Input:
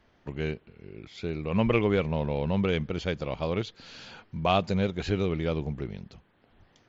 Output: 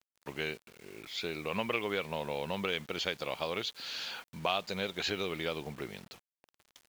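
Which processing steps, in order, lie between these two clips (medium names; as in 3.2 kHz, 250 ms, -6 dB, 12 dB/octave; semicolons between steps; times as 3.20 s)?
high-pass 1 kHz 6 dB/octave; compression 2.5:1, threshold -38 dBFS, peak gain reduction 10.5 dB; dynamic bell 3.8 kHz, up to +4 dB, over -55 dBFS, Q 1.7; bit crusher 10-bit; trim +5.5 dB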